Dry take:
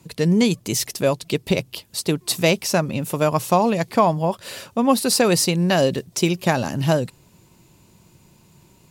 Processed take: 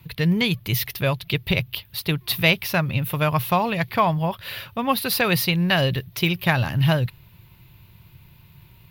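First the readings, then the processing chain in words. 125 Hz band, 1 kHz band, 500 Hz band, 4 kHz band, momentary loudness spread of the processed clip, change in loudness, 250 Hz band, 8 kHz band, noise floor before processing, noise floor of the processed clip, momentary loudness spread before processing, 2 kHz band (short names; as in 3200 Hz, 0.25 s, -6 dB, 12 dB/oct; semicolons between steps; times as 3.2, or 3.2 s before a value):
+2.0 dB, -2.0 dB, -6.0 dB, +1.0 dB, 7 LU, -2.0 dB, -4.0 dB, -10.0 dB, -55 dBFS, -52 dBFS, 8 LU, +4.0 dB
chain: EQ curve 120 Hz 0 dB, 230 Hz -16 dB, 510 Hz -15 dB, 2000 Hz -3 dB, 3600 Hz -4 dB, 7700 Hz -28 dB, 14000 Hz +1 dB; gain +8 dB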